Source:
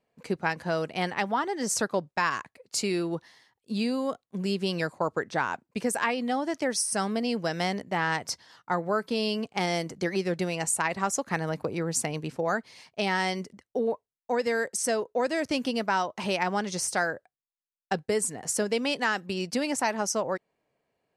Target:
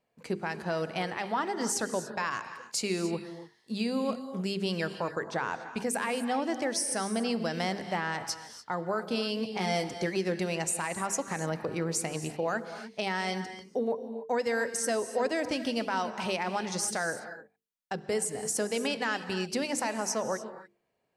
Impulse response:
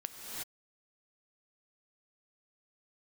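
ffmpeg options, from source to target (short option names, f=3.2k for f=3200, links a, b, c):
-filter_complex "[0:a]bandreject=f=50:t=h:w=6,bandreject=f=100:t=h:w=6,bandreject=f=150:t=h:w=6,bandreject=f=200:t=h:w=6,bandreject=f=250:t=h:w=6,bandreject=f=300:t=h:w=6,bandreject=f=350:t=h:w=6,bandreject=f=400:t=h:w=6,bandreject=f=450:t=h:w=6,alimiter=limit=-19dB:level=0:latency=1:release=91,asettb=1/sr,asplit=3[a][b][c];[a]atrim=end=9.494[d];[b]atrim=start=9.49:end=9.89,asetpts=PTS-STARTPTS,afade=t=in:d=0.004:c=qsin,afade=t=out:st=0.396:d=0.004:c=qsin,asplit=2[e][f];[f]adelay=16,volume=-4.5dB[g];[e][g]amix=inputs=2:normalize=0,atrim=end_sample=17640[h];[c]atrim=start=9.886[i];[d][h]acrossfade=d=0.004:c1=hsin:c2=qsin[j];[j][i]acrossfade=d=0.004:c1=qsin:c2=hsin,asplit=2[k][l];[1:a]atrim=start_sample=2205,afade=t=out:st=0.35:d=0.01,atrim=end_sample=15876[m];[l][m]afir=irnorm=-1:irlink=0,volume=-1dB[n];[k][n]amix=inputs=2:normalize=0,volume=-5.5dB"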